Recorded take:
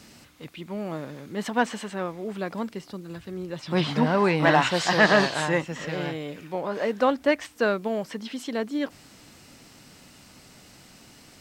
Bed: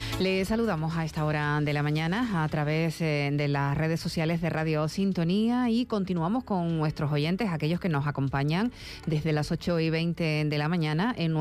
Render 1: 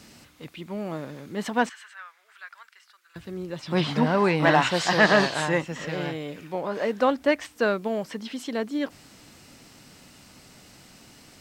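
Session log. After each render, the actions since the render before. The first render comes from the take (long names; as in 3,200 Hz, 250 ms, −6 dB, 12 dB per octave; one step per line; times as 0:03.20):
0:01.69–0:03.16: four-pole ladder high-pass 1,300 Hz, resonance 55%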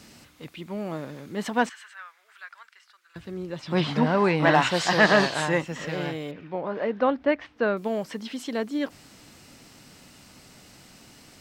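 0:02.45–0:04.53: high-shelf EQ 11,000 Hz → 7,000 Hz −7.5 dB
0:06.31–0:07.77: high-frequency loss of the air 300 metres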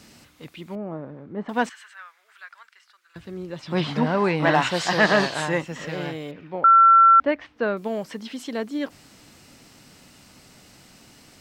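0:00.75–0:01.49: low-pass filter 1,100 Hz
0:06.64–0:07.20: beep over 1,350 Hz −9.5 dBFS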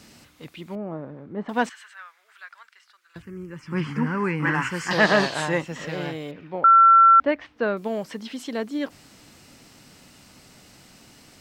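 0:03.22–0:04.91: phaser with its sweep stopped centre 1,600 Hz, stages 4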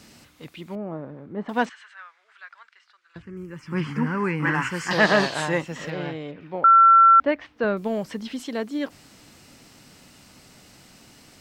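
0:01.65–0:03.37: high-frequency loss of the air 89 metres
0:05.90–0:06.41: high-frequency loss of the air 140 metres
0:07.64–0:08.43: low-shelf EQ 130 Hz +11.5 dB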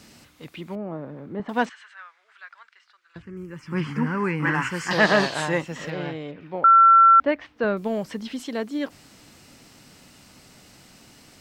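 0:00.53–0:01.40: multiband upward and downward compressor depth 40%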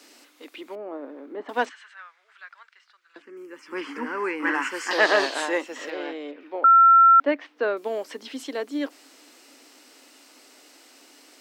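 Chebyshev high-pass filter 270 Hz, order 5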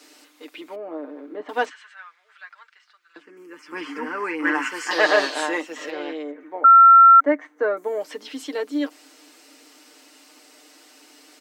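0:06.23–0:08.00: gain on a spectral selection 2,300–5,800 Hz −13 dB
comb filter 6.6 ms, depth 64%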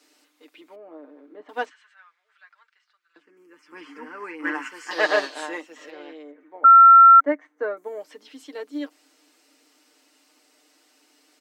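expander for the loud parts 1.5 to 1, over −30 dBFS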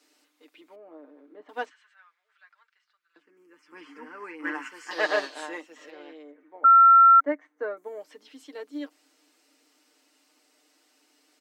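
level −4.5 dB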